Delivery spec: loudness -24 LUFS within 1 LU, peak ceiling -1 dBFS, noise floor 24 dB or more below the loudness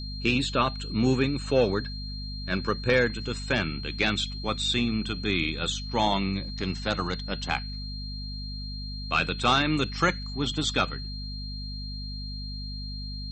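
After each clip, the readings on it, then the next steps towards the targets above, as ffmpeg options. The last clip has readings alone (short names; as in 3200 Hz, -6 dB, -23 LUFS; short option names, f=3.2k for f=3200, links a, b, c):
hum 50 Hz; harmonics up to 250 Hz; hum level -34 dBFS; steady tone 4200 Hz; tone level -39 dBFS; loudness -28.0 LUFS; peak -10.0 dBFS; loudness target -24.0 LUFS
-> -af "bandreject=f=50:t=h:w=6,bandreject=f=100:t=h:w=6,bandreject=f=150:t=h:w=6,bandreject=f=200:t=h:w=6,bandreject=f=250:t=h:w=6"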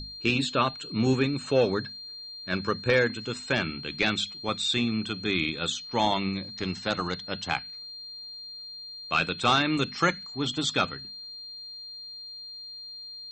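hum none; steady tone 4200 Hz; tone level -39 dBFS
-> -af "bandreject=f=4.2k:w=30"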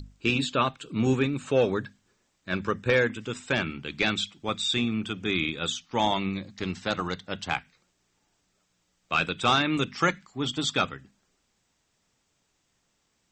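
steady tone none; loudness -27.5 LUFS; peak -10.5 dBFS; loudness target -24.0 LUFS
-> -af "volume=3.5dB"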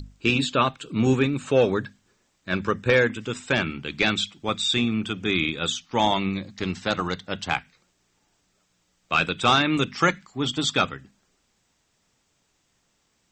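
loudness -24.0 LUFS; peak -7.0 dBFS; noise floor -70 dBFS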